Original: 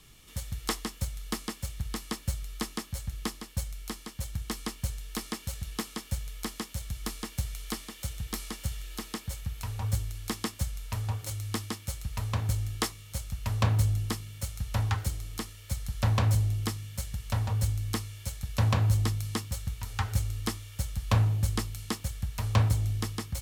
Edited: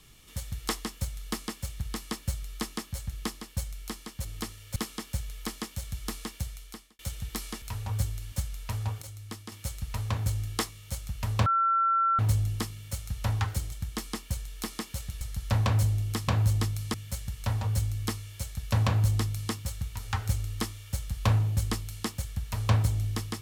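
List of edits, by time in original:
4.25–5.74 s: swap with 15.22–15.73 s
7.23–7.97 s: fade out
8.60–9.55 s: delete
10.25–10.55 s: delete
11.25–11.75 s: gain -8 dB
13.69 s: add tone 1.35 kHz -21.5 dBFS 0.73 s
18.72–19.38 s: copy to 16.80 s

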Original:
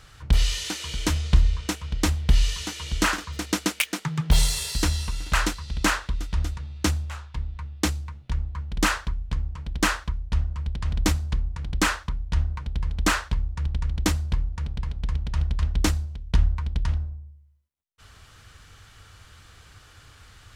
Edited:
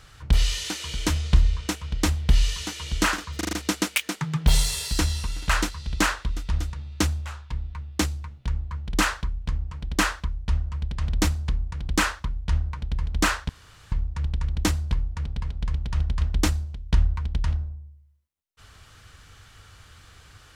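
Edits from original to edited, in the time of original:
3.37 s: stutter 0.04 s, 5 plays
13.33 s: insert room tone 0.43 s

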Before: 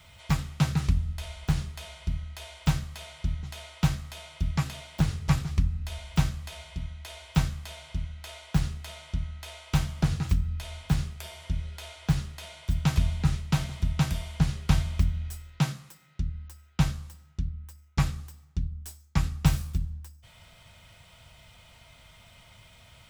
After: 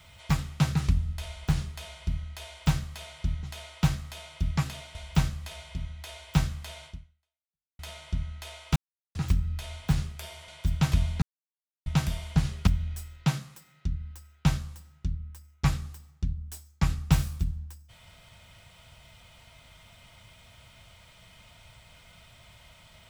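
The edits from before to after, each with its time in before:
4.95–5.96 s: delete
7.87–8.80 s: fade out exponential
9.77–10.16 s: mute
11.49–12.52 s: delete
13.26–13.90 s: mute
14.71–15.01 s: delete

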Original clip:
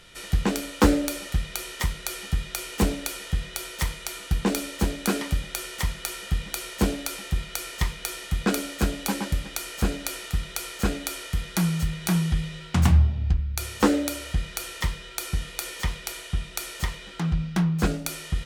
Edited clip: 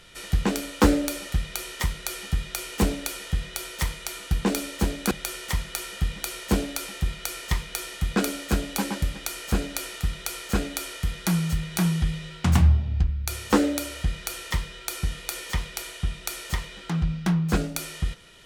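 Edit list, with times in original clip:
5.11–5.41 s: delete

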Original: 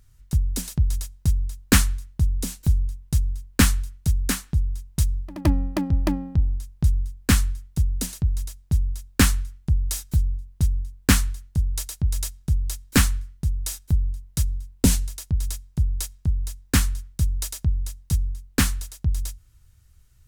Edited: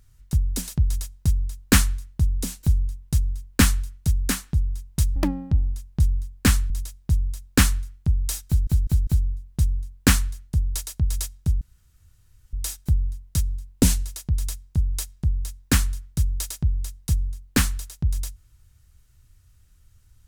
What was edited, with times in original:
5.16–6.00 s: delete
7.54–8.32 s: delete
10.09 s: stutter 0.20 s, 4 plays
12.63–13.55 s: room tone

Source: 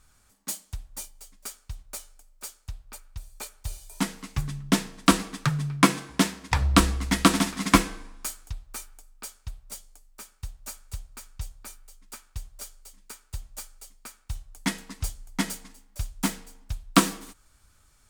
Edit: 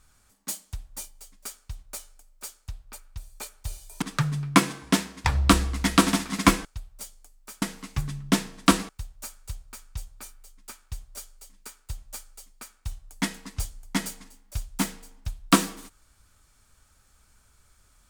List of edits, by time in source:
4.02–5.29 s: move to 10.33 s
7.92–9.36 s: delete

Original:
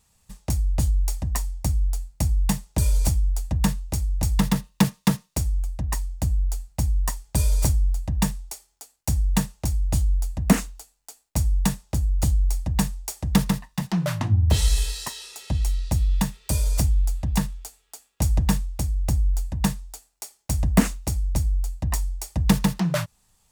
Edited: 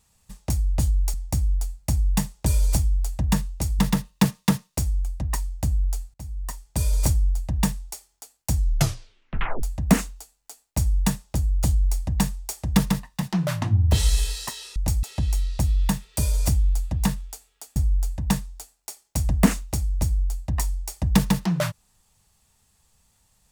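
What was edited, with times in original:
1.14–1.46 s: delete
4.11–4.38 s: move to 15.35 s
6.73–7.65 s: fade in, from -18 dB
9.14 s: tape stop 1.07 s
18.08–19.10 s: delete

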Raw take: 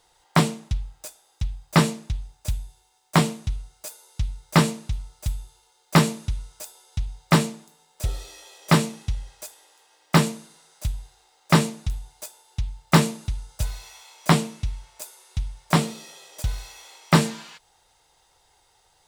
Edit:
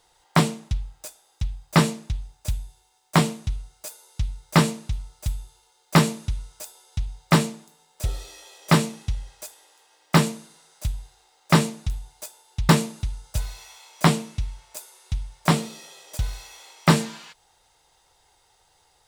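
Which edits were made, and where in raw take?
12.69–12.94 s: delete

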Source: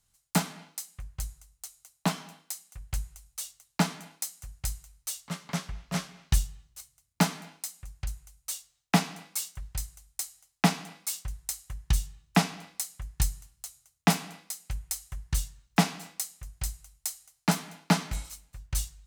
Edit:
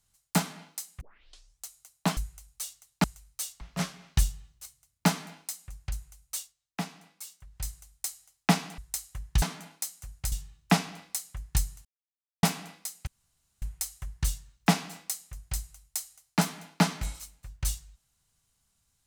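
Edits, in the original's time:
1.01 s: tape start 0.65 s
2.17–2.95 s: delete
3.82–4.72 s: move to 11.97 s
5.29–5.76 s: delete
8.53–9.82 s: dip -11 dB, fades 0.16 s
10.93–11.33 s: delete
13.50–14.08 s: mute
14.72 s: insert room tone 0.55 s

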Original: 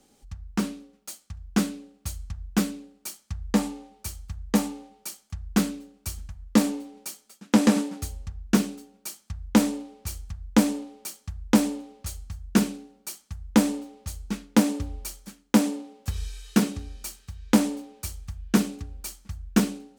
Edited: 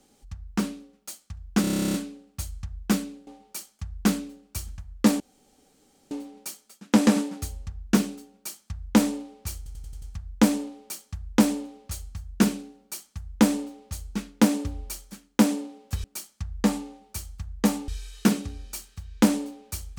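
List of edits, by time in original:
1.61 s: stutter 0.03 s, 12 plays
2.94–4.78 s: move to 16.19 s
6.71 s: insert room tone 0.91 s
10.17 s: stutter 0.09 s, 6 plays

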